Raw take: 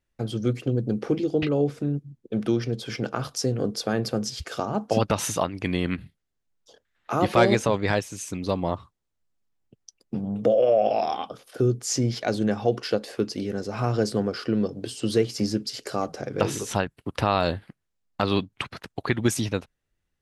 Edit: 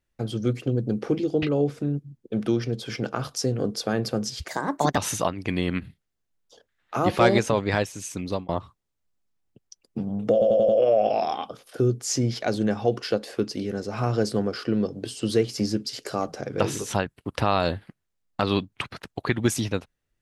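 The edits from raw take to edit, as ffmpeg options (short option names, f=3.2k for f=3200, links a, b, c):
-filter_complex "[0:a]asplit=8[a][b][c][d][e][f][g][h];[a]atrim=end=4.484[i];[b]atrim=start=4.48:end=5.14,asetpts=PTS-STARTPTS,asetrate=58653,aresample=44100,atrim=end_sample=21884,asetpts=PTS-STARTPTS[j];[c]atrim=start=5.136:end=8.65,asetpts=PTS-STARTPTS,afade=t=out:st=3.254:d=0.26:c=qsin[k];[d]atrim=start=8.65:end=10.582,asetpts=PTS-STARTPTS,afade=t=in:d=0.004:c=hsin[l];[e]atrim=start=10.488:end=10.582[m];[f]atrim=start=10.488:end=10.582[n];[g]atrim=start=10.488:end=10.582[o];[h]atrim=start=10.488[p];[i][j]acrossfade=d=0.004:c1=hsin:c2=hsin[q];[k][l]concat=n=2:v=0:a=1[r];[q][r]acrossfade=d=0.004:c1=hsin:c2=hsin[s];[s][m]acrossfade=d=0.004:c1=hsin:c2=hsin[t];[t][n]acrossfade=d=0.004:c1=hsin:c2=hsin[u];[u][o]acrossfade=d=0.004:c1=hsin:c2=hsin[v];[v][p]acrossfade=d=0.004:c1=hsin:c2=hsin"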